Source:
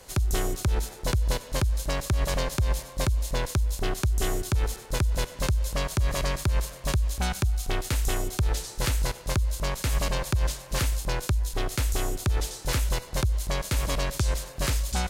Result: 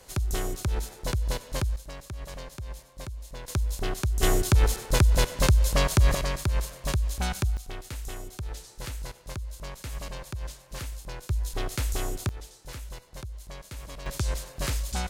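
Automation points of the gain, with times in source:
-3 dB
from 1.76 s -13 dB
from 3.48 s -2 dB
from 4.23 s +5 dB
from 6.15 s -1.5 dB
from 7.57 s -10.5 dB
from 11.3 s -2.5 dB
from 12.29 s -14 dB
from 14.06 s -3 dB

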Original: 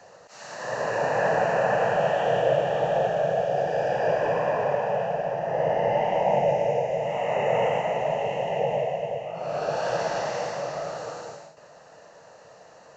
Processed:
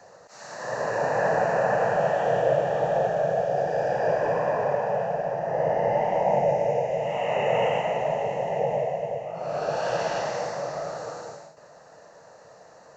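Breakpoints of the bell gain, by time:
bell 2900 Hz 0.55 oct
6.59 s -8 dB
7.25 s +3 dB
7.8 s +3 dB
8.36 s -8 dB
9.28 s -8 dB
10.12 s +3.5 dB
10.5 s -8 dB

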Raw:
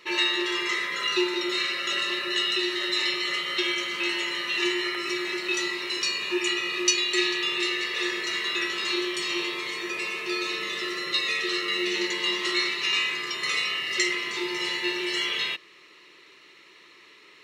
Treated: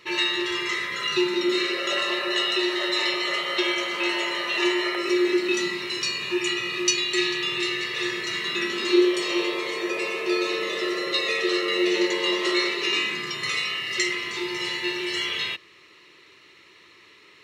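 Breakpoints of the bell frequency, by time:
bell +13.5 dB 1.3 oct
1.03 s 98 Hz
1.98 s 670 Hz
4.89 s 670 Hz
5.99 s 120 Hz
8.34 s 120 Hz
9.2 s 530 Hz
12.71 s 530 Hz
13.62 s 81 Hz

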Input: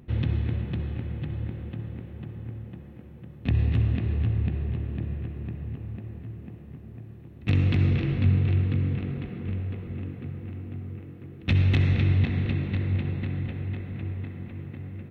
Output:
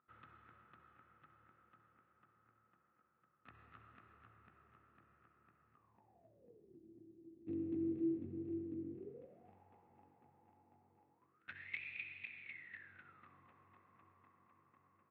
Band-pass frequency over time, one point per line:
band-pass, Q 16
5.72 s 1300 Hz
6.79 s 330 Hz
8.93 s 330 Hz
9.57 s 850 Hz
11.12 s 850 Hz
11.8 s 2400 Hz
12.4 s 2400 Hz
13.36 s 1100 Hz

